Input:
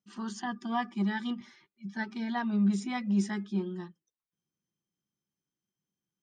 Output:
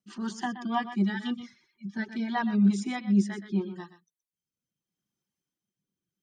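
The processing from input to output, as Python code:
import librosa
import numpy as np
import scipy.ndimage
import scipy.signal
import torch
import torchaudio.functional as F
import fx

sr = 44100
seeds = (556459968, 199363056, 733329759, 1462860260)

y = fx.dereverb_blind(x, sr, rt60_s=0.92)
y = y + 10.0 ** (-12.0 / 20.0) * np.pad(y, (int(123 * sr / 1000.0), 0))[:len(y)]
y = fx.rotary_switch(y, sr, hz=6.3, then_hz=0.75, switch_at_s=1.09)
y = y * 10.0 ** (5.5 / 20.0)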